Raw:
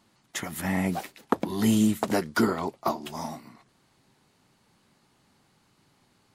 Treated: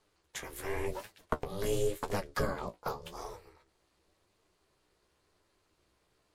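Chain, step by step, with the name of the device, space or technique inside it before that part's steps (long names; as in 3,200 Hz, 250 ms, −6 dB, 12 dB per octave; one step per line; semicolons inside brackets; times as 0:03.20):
alien voice (ring modulation 200 Hz; flanger 0.91 Hz, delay 8.8 ms, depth 9.1 ms, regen +38%)
level −1.5 dB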